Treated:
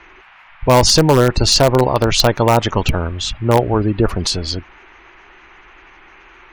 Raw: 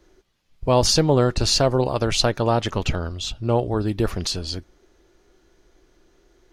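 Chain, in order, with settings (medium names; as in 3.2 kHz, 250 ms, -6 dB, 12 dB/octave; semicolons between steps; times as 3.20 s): spectral gate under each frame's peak -30 dB strong; peaking EQ 940 Hz +5 dB 0.5 oct; band noise 750–2600 Hz -52 dBFS; in parallel at -9 dB: integer overflow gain 9 dB; on the sum: trim +4 dB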